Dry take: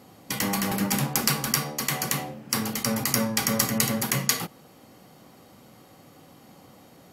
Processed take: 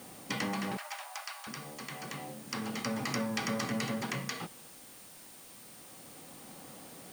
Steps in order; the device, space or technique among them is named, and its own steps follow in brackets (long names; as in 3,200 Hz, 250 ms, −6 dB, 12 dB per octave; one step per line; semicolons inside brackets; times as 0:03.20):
medium wave at night (band-pass filter 130–3,800 Hz; downward compressor, threshold −30 dBFS, peak gain reduction 8 dB; amplitude tremolo 0.29 Hz, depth 67%; steady tone 9,000 Hz −57 dBFS; white noise bed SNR 15 dB)
0:00.77–0:01.47: Butterworth high-pass 590 Hz 96 dB per octave